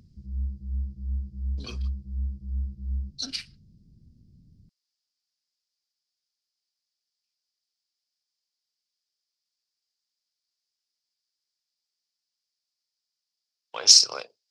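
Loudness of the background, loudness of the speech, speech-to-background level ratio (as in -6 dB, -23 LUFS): -34.0 LUFS, -16.5 LUFS, 17.5 dB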